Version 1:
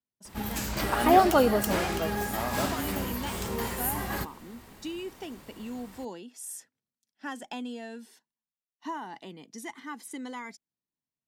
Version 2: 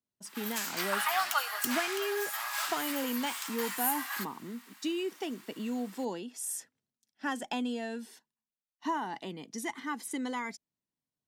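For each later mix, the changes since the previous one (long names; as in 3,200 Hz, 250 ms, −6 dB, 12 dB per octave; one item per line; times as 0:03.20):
speech +3.5 dB
background: add high-pass filter 1,100 Hz 24 dB per octave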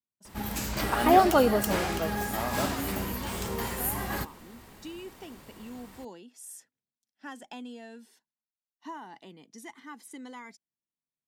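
speech −8.5 dB
background: remove high-pass filter 1,100 Hz 24 dB per octave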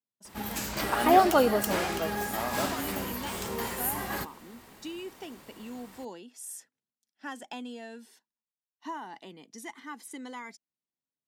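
speech +3.5 dB
master: add low-shelf EQ 130 Hz −10 dB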